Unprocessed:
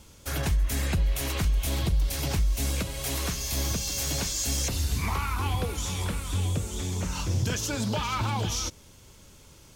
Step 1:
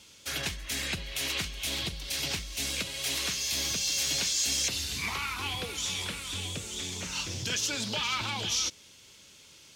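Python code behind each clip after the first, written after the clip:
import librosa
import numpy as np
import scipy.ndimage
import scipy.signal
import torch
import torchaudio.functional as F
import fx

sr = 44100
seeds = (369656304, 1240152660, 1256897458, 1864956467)

y = fx.weighting(x, sr, curve='D')
y = y * 10.0 ** (-6.0 / 20.0)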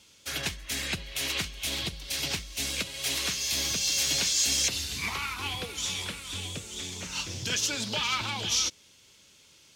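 y = fx.upward_expand(x, sr, threshold_db=-41.0, expansion=1.5)
y = y * 10.0 ** (3.5 / 20.0)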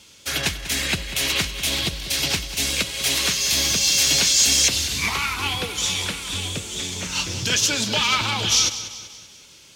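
y = fx.echo_feedback(x, sr, ms=193, feedback_pct=48, wet_db=-13.0)
y = y * 10.0 ** (8.5 / 20.0)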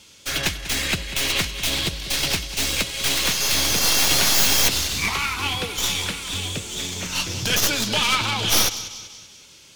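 y = fx.tracing_dist(x, sr, depth_ms=0.1)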